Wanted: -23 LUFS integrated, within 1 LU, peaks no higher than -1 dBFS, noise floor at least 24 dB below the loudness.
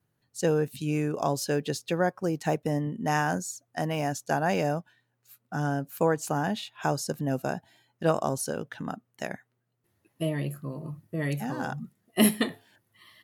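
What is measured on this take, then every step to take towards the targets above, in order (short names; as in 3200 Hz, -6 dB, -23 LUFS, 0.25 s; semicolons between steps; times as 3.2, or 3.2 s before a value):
loudness -29.5 LUFS; peak -8.5 dBFS; loudness target -23.0 LUFS
-> gain +6.5 dB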